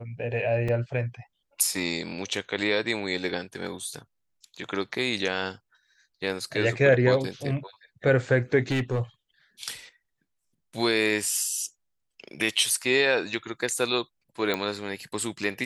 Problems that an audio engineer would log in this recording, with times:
0:00.68: drop-out 4.4 ms
0:08.71–0:09.01: clipping −21.5 dBFS
0:14.54: click −13 dBFS

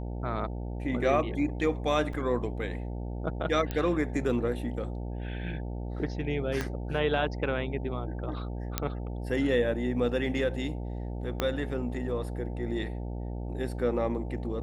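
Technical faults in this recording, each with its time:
mains buzz 60 Hz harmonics 15 −35 dBFS
0:02.13: drop-out 3.6 ms
0:03.71: click −18 dBFS
0:06.61: click −16 dBFS
0:08.78: click −10 dBFS
0:11.40: click −13 dBFS

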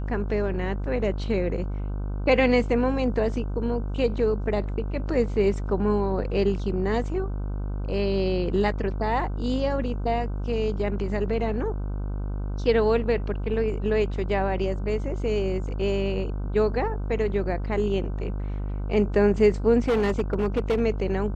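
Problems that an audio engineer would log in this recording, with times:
mains buzz 50 Hz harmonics 31 −29 dBFS
0:19.88–0:20.81: clipping −18.5 dBFS

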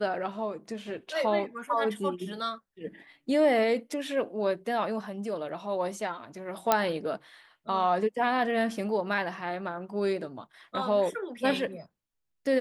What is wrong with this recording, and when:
0:06.72: click −7 dBFS

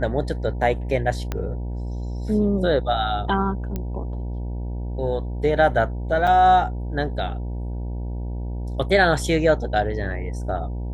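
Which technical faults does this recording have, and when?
mains buzz 60 Hz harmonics 16 −28 dBFS
0:01.32: click −12 dBFS
0:03.76: click −15 dBFS
0:06.27: drop-out 4.8 ms

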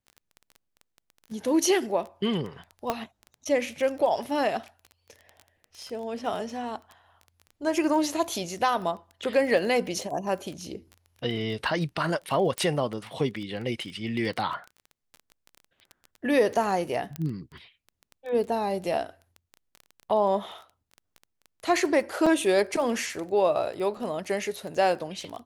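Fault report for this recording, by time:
surface crackle 15 per second −33 dBFS
0:02.90: click −12 dBFS
0:12.58: click −14 dBFS
0:17.16: click −18 dBFS
0:22.26: drop-out 4.8 ms

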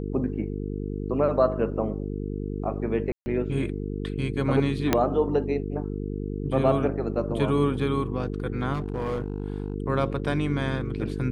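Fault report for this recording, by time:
mains buzz 50 Hz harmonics 9 −31 dBFS
0:03.12–0:03.26: drop-out 140 ms
0:04.93: click −5 dBFS
0:08.73–0:09.74: clipping −23.5 dBFS

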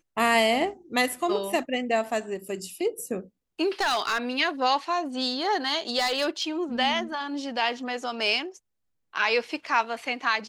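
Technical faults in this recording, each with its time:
0:03.80–0:04.18: clipping −20.5 dBFS
0:05.98–0:06.42: clipping −20 dBFS

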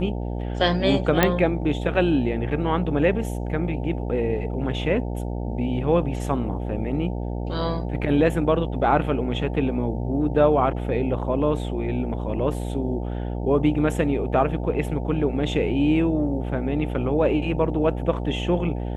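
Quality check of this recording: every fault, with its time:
mains buzz 60 Hz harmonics 15 −28 dBFS
0:01.23: click −3 dBFS

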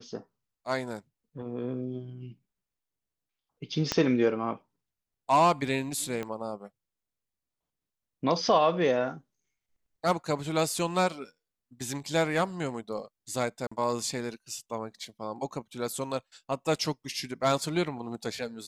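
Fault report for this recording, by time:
0:03.92: click −11 dBFS
0:06.23: click −21 dBFS
0:13.67–0:13.71: drop-out 45 ms

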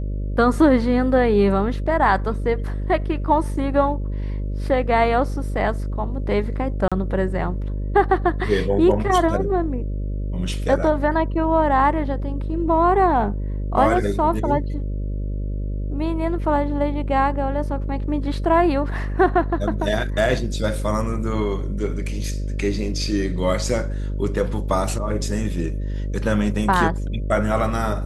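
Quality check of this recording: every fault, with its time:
mains buzz 50 Hz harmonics 12 −25 dBFS
0:06.88–0:06.92: drop-out 36 ms

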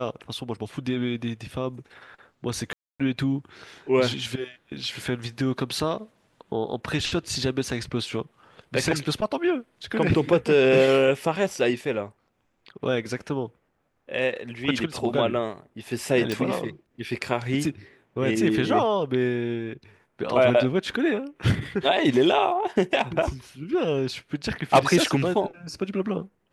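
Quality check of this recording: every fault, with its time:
0:02.73–0:03.00: drop-out 266 ms
0:16.32: click

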